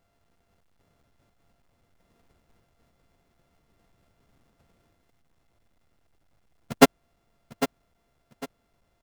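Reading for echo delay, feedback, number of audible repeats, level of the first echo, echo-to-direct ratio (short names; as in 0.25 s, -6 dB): 0.802 s, 28%, 2, -12.0 dB, -11.5 dB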